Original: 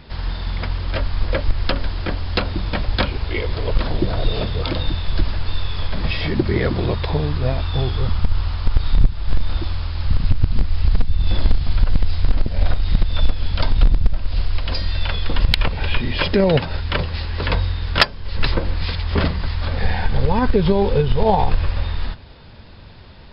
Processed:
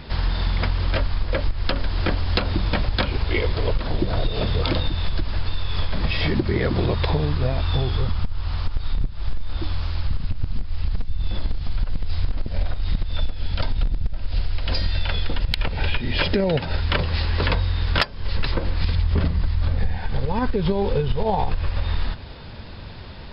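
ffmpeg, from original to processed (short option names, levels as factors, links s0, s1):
-filter_complex "[0:a]asplit=3[s0][s1][s2];[s0]afade=t=out:st=8.25:d=0.02[s3];[s1]flanger=delay=1.3:depth=5.7:regen=88:speed=1.7:shape=sinusoidal,afade=t=in:st=8.25:d=0.02,afade=t=out:st=12.09:d=0.02[s4];[s2]afade=t=in:st=12.09:d=0.02[s5];[s3][s4][s5]amix=inputs=3:normalize=0,asettb=1/sr,asplit=3[s6][s7][s8];[s6]atrim=end=13.134[s9];[s7]atrim=start=13.13:end=16.78,asetpts=PTS-STARTPTS,afade=t=in:d=0.004:c=qsin,afade=t=out:st=3.646:d=0.004:c=qsin,bandreject=f=1100:w=8[s10];[s8]atrim=start=16.776[s11];[s9][s10]acrossfade=d=0.004:c1=hsin:c2=qsin[s12];[s12][s11]acrossfade=d=0.004:c1=qsin:c2=hsin,asettb=1/sr,asplit=3[s13][s14][s15];[s13]atrim=end=18.844[s16];[s14]atrim=start=18.84:end=19.98,asetpts=PTS-STARTPTS,afade=t=in:d=0.004:c=qsin,afade=t=out:st=1.136:d=0.004:c=qsin,lowshelf=f=270:g=10.5[s17];[s15]atrim=start=19.976[s18];[s16][s17]acrossfade=d=0.004:c1=hsin:c2=qsin[s19];[s19][s18]acrossfade=d=0.004:c1=qsin:c2=hsin,acompressor=threshold=0.0891:ratio=10,volume=1.68"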